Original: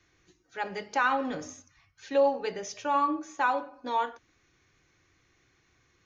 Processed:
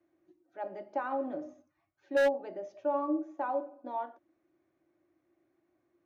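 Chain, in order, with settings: double band-pass 450 Hz, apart 0.82 oct; wavefolder -25.5 dBFS; gain +5.5 dB

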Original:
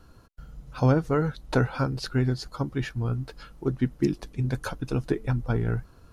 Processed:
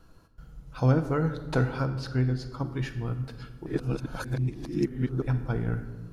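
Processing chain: 1.85–2.6 high shelf 4200 Hz -7 dB; shoebox room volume 970 m³, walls mixed, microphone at 0.67 m; 3.66–5.22 reverse; gain -3.5 dB

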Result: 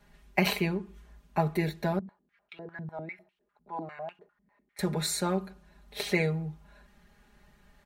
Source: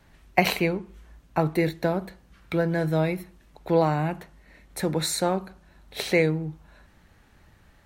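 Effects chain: comb 4.9 ms, depth 97%; 1.99–4.79 stepped band-pass 10 Hz 210–2900 Hz; gain -6.5 dB

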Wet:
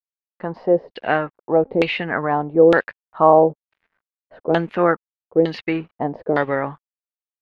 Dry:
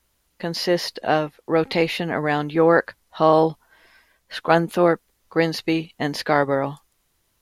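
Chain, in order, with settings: crossover distortion -48 dBFS; LFO low-pass saw down 1.1 Hz 400–3400 Hz; gain -1 dB

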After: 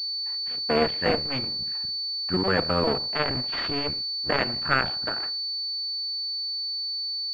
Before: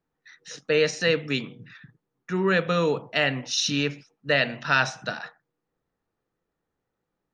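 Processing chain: cycle switcher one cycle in 2, muted; 1.28–1.72 de-hum 75.14 Hz, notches 27; pulse-width modulation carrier 4500 Hz; gain +2 dB

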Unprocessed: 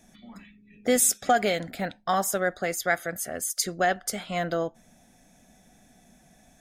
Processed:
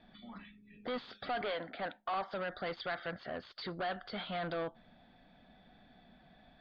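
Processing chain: 1.41–2.31 three-band isolator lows -15 dB, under 260 Hz, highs -13 dB, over 3000 Hz; limiter -18 dBFS, peak gain reduction 8.5 dB; soft clip -30.5 dBFS, distortion -8 dB; rippled Chebyshev low-pass 4700 Hz, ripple 6 dB; gain +1.5 dB

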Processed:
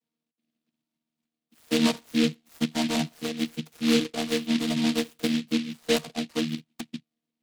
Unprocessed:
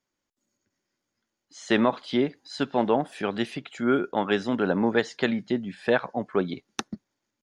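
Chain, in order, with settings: chord vocoder bare fifth, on D#3; noise-modulated delay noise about 3000 Hz, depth 0.18 ms

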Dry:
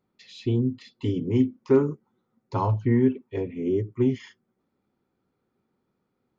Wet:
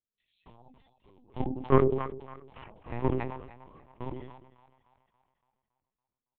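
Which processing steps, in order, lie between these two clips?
Chebyshev high-pass 220 Hz, order 3; comb 4.7 ms, depth 32%; added harmonics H 3 -9 dB, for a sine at -7.5 dBFS; in parallel at -5.5 dB: sample gate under -37 dBFS; on the sum: split-band echo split 560 Hz, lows 0.102 s, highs 0.282 s, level -13.5 dB; LPC vocoder at 8 kHz pitch kept; sustainer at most 58 dB/s; gain -3 dB

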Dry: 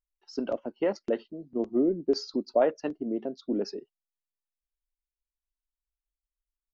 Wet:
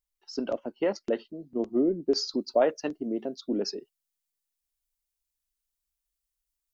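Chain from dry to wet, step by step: high shelf 3600 Hz +7 dB, from 2.18 s +12 dB

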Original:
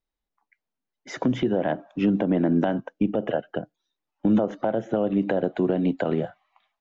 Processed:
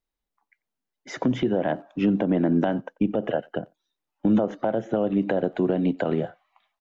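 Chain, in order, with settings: speakerphone echo 90 ms, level -26 dB

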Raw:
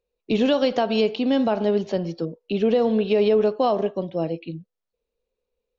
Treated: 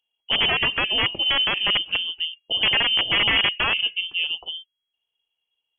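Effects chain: wrapped overs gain 13 dB; inverted band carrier 3300 Hz; dynamic EQ 1500 Hz, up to -4 dB, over -36 dBFS, Q 2.3

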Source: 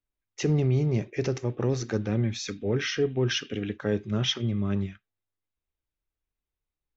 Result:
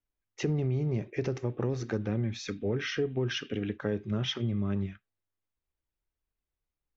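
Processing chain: high shelf 4700 Hz -12 dB; compressor 3:1, threshold -27 dBFS, peak gain reduction 6 dB

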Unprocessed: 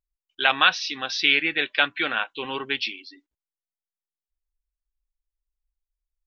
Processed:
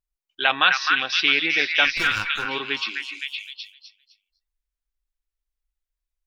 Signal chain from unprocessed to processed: 1.87–2.46 minimum comb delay 0.76 ms; on a send: delay with a stepping band-pass 0.257 s, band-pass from 1700 Hz, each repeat 0.7 oct, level 0 dB

